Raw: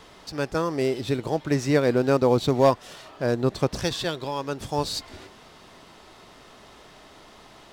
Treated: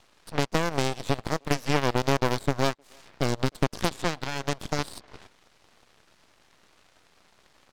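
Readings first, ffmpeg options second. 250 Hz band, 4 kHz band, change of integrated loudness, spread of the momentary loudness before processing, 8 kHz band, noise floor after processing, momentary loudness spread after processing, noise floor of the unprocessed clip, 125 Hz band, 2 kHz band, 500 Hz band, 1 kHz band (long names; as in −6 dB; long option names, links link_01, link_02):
−4.5 dB, −0.5 dB, −3.5 dB, 11 LU, +1.0 dB, −63 dBFS, 7 LU, −50 dBFS, −1.5 dB, +2.0 dB, −6.5 dB, −1.0 dB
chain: -filter_complex "[0:a]acrossover=split=2300|5100[link_01][link_02][link_03];[link_01]acompressor=threshold=-31dB:ratio=4[link_04];[link_02]acompressor=threshold=-45dB:ratio=4[link_05];[link_03]acompressor=threshold=-55dB:ratio=4[link_06];[link_04][link_05][link_06]amix=inputs=3:normalize=0,aeval=exprs='0.133*(cos(1*acos(clip(val(0)/0.133,-1,1)))-cos(1*PI/2))+0.0531*(cos(4*acos(clip(val(0)/0.133,-1,1)))-cos(4*PI/2))+0.0188*(cos(7*acos(clip(val(0)/0.133,-1,1)))-cos(7*PI/2))':channel_layout=same,asplit=2[link_07][link_08];[link_08]adelay=310,highpass=300,lowpass=3400,asoftclip=type=hard:threshold=-23.5dB,volume=-30dB[link_09];[link_07][link_09]amix=inputs=2:normalize=0,volume=6dB"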